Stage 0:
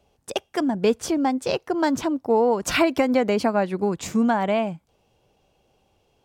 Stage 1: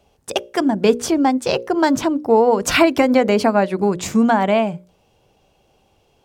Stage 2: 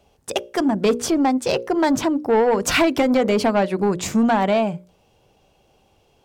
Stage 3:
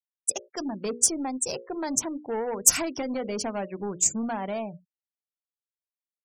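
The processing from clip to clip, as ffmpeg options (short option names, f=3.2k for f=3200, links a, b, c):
-af "bandreject=f=60:t=h:w=6,bandreject=f=120:t=h:w=6,bandreject=f=180:t=h:w=6,bandreject=f=240:t=h:w=6,bandreject=f=300:t=h:w=6,bandreject=f=360:t=h:w=6,bandreject=f=420:t=h:w=6,bandreject=f=480:t=h:w=6,bandreject=f=540:t=h:w=6,bandreject=f=600:t=h:w=6,volume=6dB"
-af "asoftclip=type=tanh:threshold=-11dB"
-af "aeval=exprs='0.282*(cos(1*acos(clip(val(0)/0.282,-1,1)))-cos(1*PI/2))+0.00631*(cos(6*acos(clip(val(0)/0.282,-1,1)))-cos(6*PI/2))+0.00447*(cos(7*acos(clip(val(0)/0.282,-1,1)))-cos(7*PI/2))+0.00355*(cos(8*acos(clip(val(0)/0.282,-1,1)))-cos(8*PI/2))':c=same,afftfilt=real='re*gte(hypot(re,im),0.0355)':imag='im*gte(hypot(re,im),0.0355)':win_size=1024:overlap=0.75,aexciter=amount=15:drive=7:freq=5.8k,volume=-13dB"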